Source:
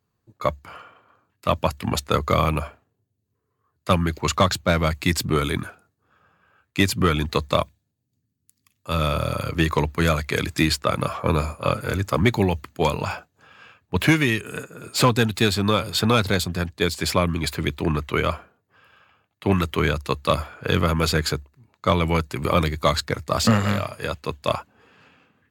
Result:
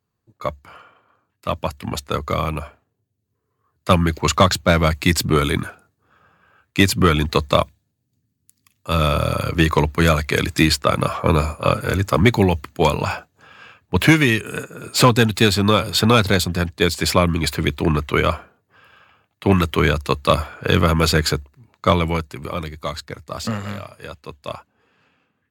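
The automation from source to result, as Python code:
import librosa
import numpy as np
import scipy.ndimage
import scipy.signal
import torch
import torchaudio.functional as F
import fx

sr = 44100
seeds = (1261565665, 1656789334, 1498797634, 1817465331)

y = fx.gain(x, sr, db=fx.line((2.6, -2.0), (3.97, 4.5), (21.87, 4.5), (22.51, -7.0)))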